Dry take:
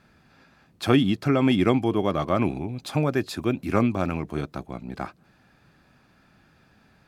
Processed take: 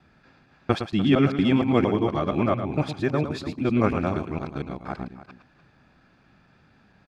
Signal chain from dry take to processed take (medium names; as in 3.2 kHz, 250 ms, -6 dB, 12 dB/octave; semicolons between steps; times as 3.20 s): time reversed locally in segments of 231 ms; distance through air 85 m; multi-tap echo 111/296 ms -9/-14.5 dB